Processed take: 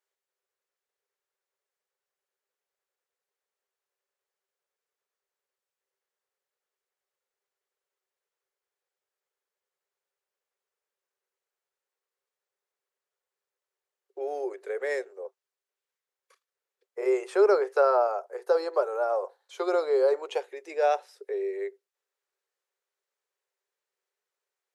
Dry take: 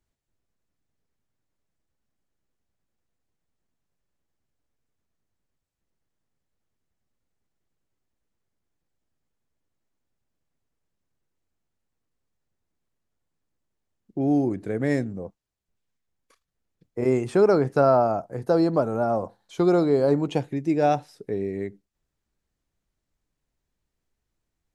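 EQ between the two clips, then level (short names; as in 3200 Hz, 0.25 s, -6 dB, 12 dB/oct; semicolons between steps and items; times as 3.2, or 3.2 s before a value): rippled Chebyshev high-pass 380 Hz, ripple 3 dB; notch 660 Hz, Q 12; 0.0 dB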